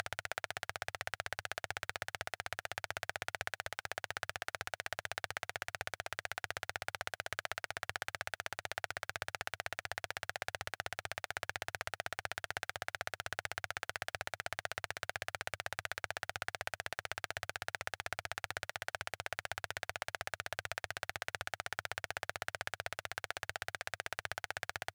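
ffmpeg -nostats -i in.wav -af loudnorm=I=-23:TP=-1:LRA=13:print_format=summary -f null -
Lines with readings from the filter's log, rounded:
Input Integrated:    -41.5 LUFS
Input True Peak:     -15.2 dBTP
Input LRA:             0.3 LU
Input Threshold:     -51.5 LUFS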